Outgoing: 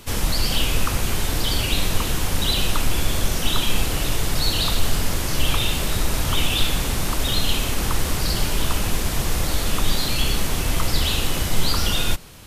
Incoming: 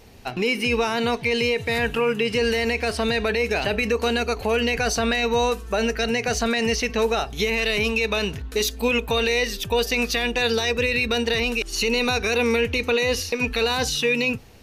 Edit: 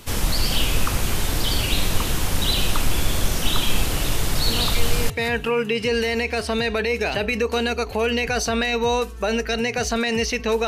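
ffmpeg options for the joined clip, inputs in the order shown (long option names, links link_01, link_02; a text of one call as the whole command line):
ffmpeg -i cue0.wav -i cue1.wav -filter_complex "[1:a]asplit=2[link_01][link_02];[0:a]apad=whole_dur=10.67,atrim=end=10.67,atrim=end=5.102[link_03];[link_02]atrim=start=1.598:end=7.17[link_04];[link_01]atrim=start=0.98:end=1.6,asetpts=PTS-STARTPTS,volume=-9dB,afade=type=in:duration=0.004:curve=hsin,afade=type=out:start_time=0.616:duration=0.004:curve=hsin,adelay=4480[link_05];[link_03][link_04]acrossfade=duration=0.004:curve1=hsin:curve2=hsin[link_06];[link_06][link_05]amix=inputs=2:normalize=0" out.wav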